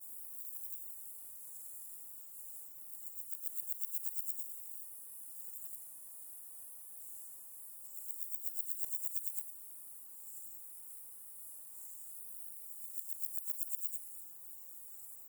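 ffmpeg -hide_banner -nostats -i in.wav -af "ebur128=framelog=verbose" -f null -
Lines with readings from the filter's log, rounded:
Integrated loudness:
  I:         -41.3 LUFS
  Threshold: -51.3 LUFS
Loudness range:
  LRA:         6.5 LU
  Threshold: -61.2 LUFS
  LRA low:   -45.8 LUFS
  LRA high:  -39.2 LUFS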